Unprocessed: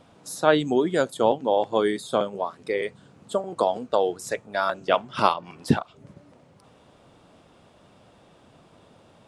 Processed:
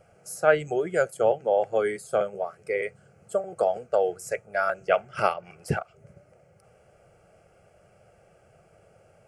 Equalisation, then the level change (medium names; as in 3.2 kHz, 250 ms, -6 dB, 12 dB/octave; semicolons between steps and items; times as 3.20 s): band-stop 1.8 kHz, Q 6.7; dynamic bell 2 kHz, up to +4 dB, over -36 dBFS, Q 0.94; static phaser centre 1 kHz, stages 6; 0.0 dB